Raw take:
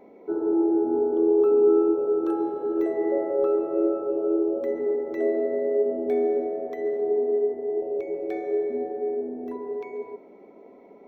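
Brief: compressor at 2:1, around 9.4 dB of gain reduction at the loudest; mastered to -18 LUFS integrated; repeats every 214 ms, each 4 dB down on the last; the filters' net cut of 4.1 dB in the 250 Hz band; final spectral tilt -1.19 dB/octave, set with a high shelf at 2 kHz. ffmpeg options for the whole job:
-af "equalizer=f=250:t=o:g=-7,highshelf=f=2000:g=4,acompressor=threshold=0.0158:ratio=2,aecho=1:1:214|428|642|856|1070|1284|1498|1712|1926:0.631|0.398|0.25|0.158|0.0994|0.0626|0.0394|0.0249|0.0157,volume=5.01"

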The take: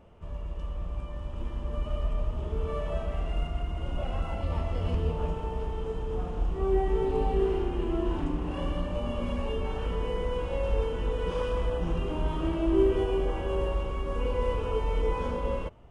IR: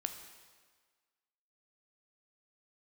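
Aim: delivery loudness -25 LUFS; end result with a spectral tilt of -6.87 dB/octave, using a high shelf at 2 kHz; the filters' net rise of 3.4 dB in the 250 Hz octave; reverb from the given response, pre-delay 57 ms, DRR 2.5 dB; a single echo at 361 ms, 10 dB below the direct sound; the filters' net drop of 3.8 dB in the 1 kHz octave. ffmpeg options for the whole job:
-filter_complex "[0:a]equalizer=f=250:t=o:g=5.5,equalizer=f=1000:t=o:g=-6,highshelf=f=2000:g=4.5,aecho=1:1:361:0.316,asplit=2[s0][s1];[1:a]atrim=start_sample=2205,adelay=57[s2];[s1][s2]afir=irnorm=-1:irlink=0,volume=0.75[s3];[s0][s3]amix=inputs=2:normalize=0,volume=1.26"

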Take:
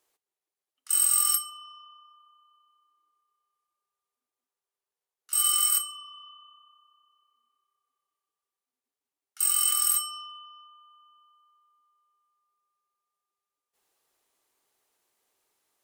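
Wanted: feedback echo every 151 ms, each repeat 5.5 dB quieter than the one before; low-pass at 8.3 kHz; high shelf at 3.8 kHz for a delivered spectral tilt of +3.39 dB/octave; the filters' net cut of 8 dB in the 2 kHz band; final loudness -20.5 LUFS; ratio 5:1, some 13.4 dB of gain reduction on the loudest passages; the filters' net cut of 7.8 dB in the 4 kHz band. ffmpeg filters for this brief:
-af "lowpass=8300,equalizer=f=2000:t=o:g=-8.5,highshelf=f=3800:g=-4.5,equalizer=f=4000:t=o:g=-4.5,acompressor=threshold=0.00631:ratio=5,aecho=1:1:151|302|453|604|755|906|1057:0.531|0.281|0.149|0.079|0.0419|0.0222|0.0118,volume=15.8"

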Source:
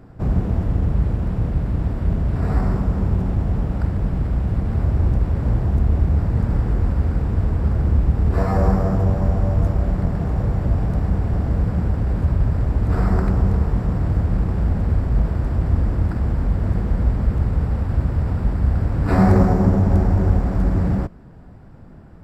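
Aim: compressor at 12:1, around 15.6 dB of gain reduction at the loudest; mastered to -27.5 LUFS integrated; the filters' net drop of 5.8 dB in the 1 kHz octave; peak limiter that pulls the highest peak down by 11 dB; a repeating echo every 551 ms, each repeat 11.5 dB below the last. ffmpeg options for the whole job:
-af "equalizer=f=1000:t=o:g=-8.5,acompressor=threshold=0.0447:ratio=12,alimiter=level_in=2:limit=0.0631:level=0:latency=1,volume=0.501,aecho=1:1:551|1102|1653:0.266|0.0718|0.0194,volume=3.35"

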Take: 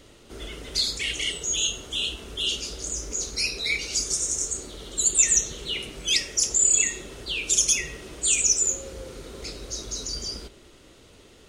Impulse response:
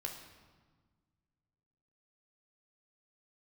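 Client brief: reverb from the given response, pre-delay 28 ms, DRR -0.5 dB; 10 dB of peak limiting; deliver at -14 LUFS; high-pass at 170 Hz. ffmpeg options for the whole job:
-filter_complex "[0:a]highpass=170,alimiter=limit=0.141:level=0:latency=1,asplit=2[s0][s1];[1:a]atrim=start_sample=2205,adelay=28[s2];[s1][s2]afir=irnorm=-1:irlink=0,volume=1.12[s3];[s0][s3]amix=inputs=2:normalize=0,volume=3.35"

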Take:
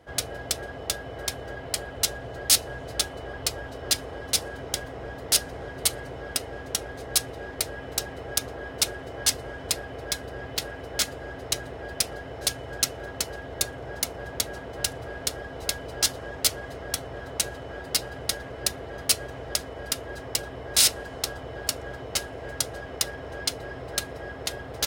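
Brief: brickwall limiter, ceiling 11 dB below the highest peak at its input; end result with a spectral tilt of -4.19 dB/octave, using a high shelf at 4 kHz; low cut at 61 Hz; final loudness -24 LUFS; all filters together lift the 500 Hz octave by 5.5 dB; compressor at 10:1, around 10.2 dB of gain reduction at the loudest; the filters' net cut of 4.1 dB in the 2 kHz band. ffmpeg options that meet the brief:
-af "highpass=61,equalizer=f=500:t=o:g=7,equalizer=f=2000:t=o:g=-5,highshelf=f=4000:g=-3.5,acompressor=threshold=0.0355:ratio=10,volume=4.22,alimiter=limit=0.266:level=0:latency=1"

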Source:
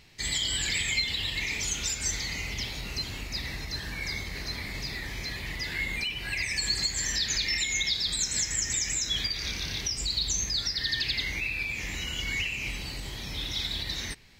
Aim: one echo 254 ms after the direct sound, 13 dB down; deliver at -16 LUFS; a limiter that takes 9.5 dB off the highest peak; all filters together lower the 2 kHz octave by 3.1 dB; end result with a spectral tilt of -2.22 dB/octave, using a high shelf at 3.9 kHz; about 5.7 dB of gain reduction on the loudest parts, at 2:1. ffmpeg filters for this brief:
-af "equalizer=f=2000:t=o:g=-5.5,highshelf=f=3900:g=7,acompressor=threshold=0.0282:ratio=2,alimiter=level_in=1.33:limit=0.0631:level=0:latency=1,volume=0.75,aecho=1:1:254:0.224,volume=7.5"

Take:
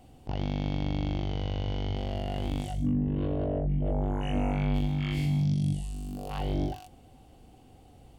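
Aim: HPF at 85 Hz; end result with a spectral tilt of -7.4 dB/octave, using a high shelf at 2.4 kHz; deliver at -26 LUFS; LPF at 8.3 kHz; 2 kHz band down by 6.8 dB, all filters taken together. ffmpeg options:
-af "highpass=85,lowpass=8300,equalizer=f=2000:t=o:g=-4,highshelf=f=2400:g=-8,volume=2"

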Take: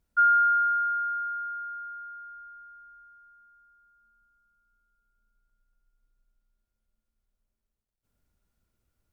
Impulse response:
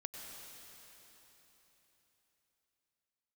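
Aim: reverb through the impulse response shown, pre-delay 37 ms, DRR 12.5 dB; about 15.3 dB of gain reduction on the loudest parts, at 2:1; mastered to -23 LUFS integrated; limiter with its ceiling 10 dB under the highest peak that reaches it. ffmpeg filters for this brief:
-filter_complex "[0:a]acompressor=threshold=0.00398:ratio=2,alimiter=level_in=6.31:limit=0.0631:level=0:latency=1,volume=0.158,asplit=2[s0][s1];[1:a]atrim=start_sample=2205,adelay=37[s2];[s1][s2]afir=irnorm=-1:irlink=0,volume=0.299[s3];[s0][s3]amix=inputs=2:normalize=0,volume=10.6"

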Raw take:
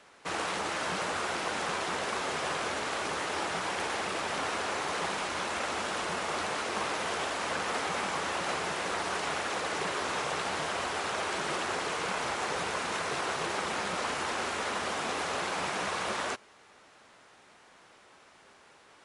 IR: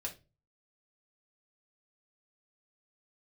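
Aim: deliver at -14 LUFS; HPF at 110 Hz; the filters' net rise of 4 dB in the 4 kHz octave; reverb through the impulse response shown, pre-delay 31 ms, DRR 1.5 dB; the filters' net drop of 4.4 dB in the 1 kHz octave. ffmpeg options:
-filter_complex "[0:a]highpass=110,equalizer=f=1000:t=o:g=-6,equalizer=f=4000:t=o:g=5.5,asplit=2[s0][s1];[1:a]atrim=start_sample=2205,adelay=31[s2];[s1][s2]afir=irnorm=-1:irlink=0,volume=0.891[s3];[s0][s3]amix=inputs=2:normalize=0,volume=6.31"

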